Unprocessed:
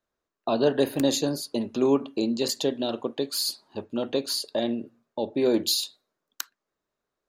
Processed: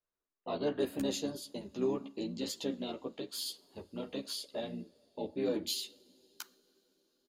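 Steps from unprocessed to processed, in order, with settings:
coupled-rooms reverb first 0.4 s, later 5 s, from −17 dB, DRR 18.5 dB
pitch-shifted copies added −5 semitones −8 dB
multi-voice chorus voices 6, 0.76 Hz, delay 13 ms, depth 2.8 ms
level −9 dB

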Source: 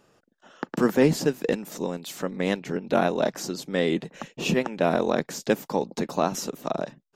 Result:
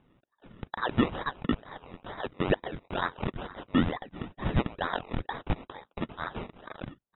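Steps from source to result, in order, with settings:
high-pass with resonance 1,800 Hz, resonance Q 8.7
sample-and-hold swept by an LFO 22×, swing 60% 2.2 Hz
linear-phase brick-wall low-pass 3,900 Hz
level −4.5 dB

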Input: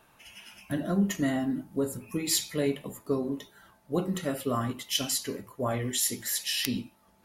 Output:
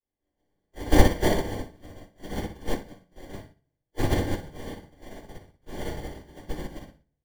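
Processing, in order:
low-shelf EQ 130 Hz +9.5 dB
comb filter 6.2 ms, depth 72%
dynamic equaliser 900 Hz, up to −6 dB, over −46 dBFS, Q 1.2
volume swells 108 ms
cochlear-implant simulation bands 1
sample-rate reduction 1,300 Hz, jitter 0%
flutter between parallel walls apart 10.4 metres, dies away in 0.56 s
rectangular room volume 71 cubic metres, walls mixed, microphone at 3.1 metres
expander for the loud parts 2.5 to 1, over −28 dBFS
level −6 dB

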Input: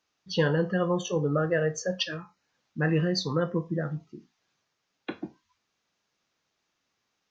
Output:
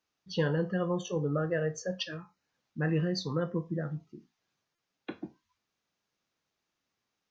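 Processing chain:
low-shelf EQ 450 Hz +3.5 dB
buffer that repeats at 0:04.75, samples 128, times 10
level −6.5 dB

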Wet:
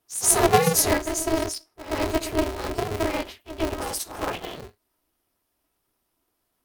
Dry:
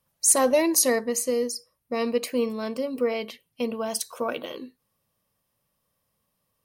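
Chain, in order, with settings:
random phases in long frames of 50 ms
echo ahead of the sound 123 ms −12.5 dB
ring modulator with a square carrier 160 Hz

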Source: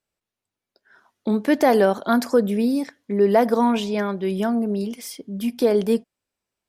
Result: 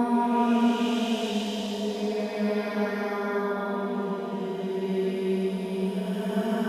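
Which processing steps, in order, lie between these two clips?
feedback delay with all-pass diffusion 453 ms, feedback 59%, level −14.5 dB
extreme stretch with random phases 8.6×, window 0.25 s, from 0:03.66
level −5 dB

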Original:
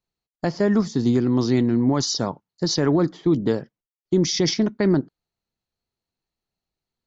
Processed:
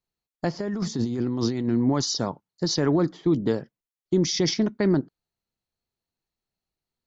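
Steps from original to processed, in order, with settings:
0:00.59–0:01.68: compressor whose output falls as the input rises −24 dBFS, ratio −1
level −2.5 dB

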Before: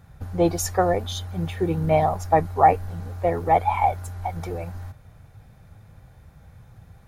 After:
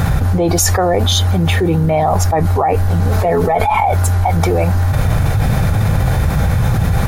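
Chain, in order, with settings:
0:03.11–0:03.80: comb filter 4.6 ms, depth 69%
envelope flattener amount 100%
level −2.5 dB

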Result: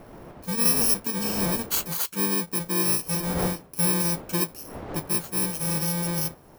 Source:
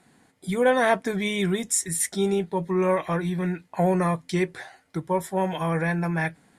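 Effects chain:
samples in bit-reversed order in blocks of 64 samples
wind on the microphone 610 Hz −38 dBFS
level −1.5 dB

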